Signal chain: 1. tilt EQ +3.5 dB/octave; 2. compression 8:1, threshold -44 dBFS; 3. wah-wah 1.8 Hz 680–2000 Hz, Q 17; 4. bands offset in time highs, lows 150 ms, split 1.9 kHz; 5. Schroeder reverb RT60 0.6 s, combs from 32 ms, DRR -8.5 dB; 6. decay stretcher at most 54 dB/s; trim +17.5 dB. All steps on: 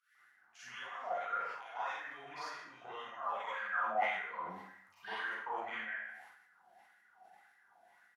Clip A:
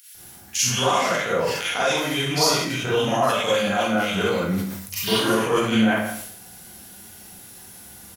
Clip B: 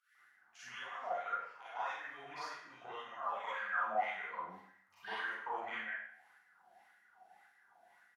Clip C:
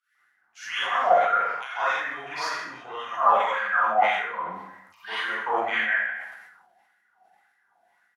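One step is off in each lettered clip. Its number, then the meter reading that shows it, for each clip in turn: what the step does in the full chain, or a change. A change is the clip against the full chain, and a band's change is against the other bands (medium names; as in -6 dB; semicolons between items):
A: 3, crest factor change -3.0 dB; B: 6, momentary loudness spread change -2 LU; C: 2, mean gain reduction 12.5 dB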